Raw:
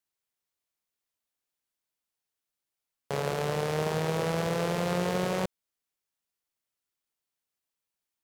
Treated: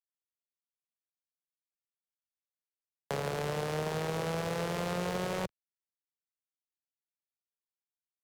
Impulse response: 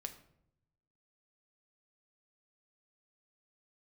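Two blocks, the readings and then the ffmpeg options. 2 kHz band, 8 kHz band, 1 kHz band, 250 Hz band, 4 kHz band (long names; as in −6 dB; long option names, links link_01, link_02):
−3.5 dB, −3.5 dB, −4.0 dB, −5.0 dB, −3.5 dB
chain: -filter_complex "[0:a]asplit=2[link_01][link_02];[1:a]atrim=start_sample=2205,asetrate=48510,aresample=44100[link_03];[link_02][link_03]afir=irnorm=-1:irlink=0,volume=-7.5dB[link_04];[link_01][link_04]amix=inputs=2:normalize=0,aeval=exprs='sgn(val(0))*max(abs(val(0))-0.00944,0)':channel_layout=same,acrossover=split=130|260[link_05][link_06][link_07];[link_05]acompressor=threshold=-43dB:ratio=4[link_08];[link_06]acompressor=threshold=-44dB:ratio=4[link_09];[link_07]acompressor=threshold=-32dB:ratio=4[link_10];[link_08][link_09][link_10]amix=inputs=3:normalize=0"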